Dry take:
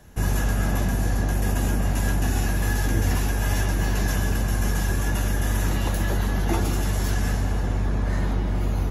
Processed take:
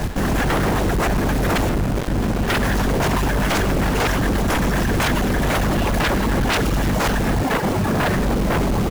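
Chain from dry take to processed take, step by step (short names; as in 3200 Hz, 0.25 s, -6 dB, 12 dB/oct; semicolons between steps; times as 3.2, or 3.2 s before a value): 7.42–8.15 HPF 140 Hz 12 dB/oct; reverb removal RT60 0.69 s; LPF 1100 Hz 6 dB/oct; notches 60/120/180/240/300/360/420/480/540/600 Hz; reverb removal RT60 1.5 s; limiter -24 dBFS, peak gain reduction 9.5 dB; chopper 2 Hz, depth 65%, duty 15%; sine folder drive 18 dB, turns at -23 dBFS; companded quantiser 4-bit; speakerphone echo 0.1 s, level -7 dB; 1.69–2.48 running maximum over 33 samples; gain +8 dB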